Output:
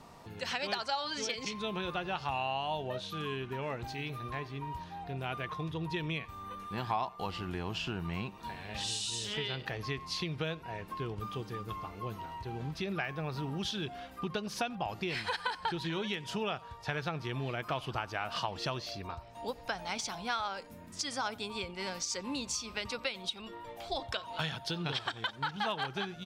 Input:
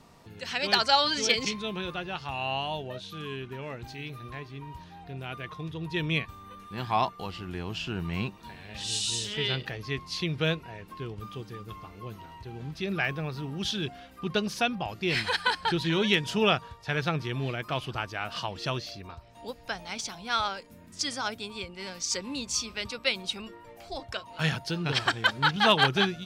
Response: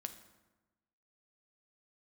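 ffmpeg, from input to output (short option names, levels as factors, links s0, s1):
-filter_complex "[0:a]asettb=1/sr,asplit=3[s0][s1][s2];[s0]atrim=end=23.154[s3];[s1]atrim=start=23.15:end=25.33,asetpts=PTS-STARTPTS,afade=t=in:d=0.004:c=qsin,afade=t=out:st=2.176:d=0.004:c=qsin,equalizer=f=3500:t=o:w=0.34:g=9.5[s4];[s2]atrim=start=25.326[s5];[s3][s4]acrossfade=d=0.004:c1=hsin:c2=qsin[s6];[s6][s5]acrossfade=d=0.004:c1=qsin:c2=hsin,acompressor=threshold=0.0224:ratio=12,equalizer=f=860:t=o:w=1.3:g=5,asplit=2[s7][s8];[s8]adelay=90,highpass=300,lowpass=3400,asoftclip=type=hard:threshold=0.0376,volume=0.0891[s9];[s7][s9]amix=inputs=2:normalize=0"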